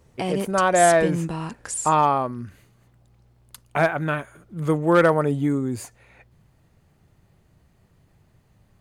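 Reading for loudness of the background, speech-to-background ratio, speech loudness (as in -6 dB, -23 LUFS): -28.5 LUFS, 7.0 dB, -21.5 LUFS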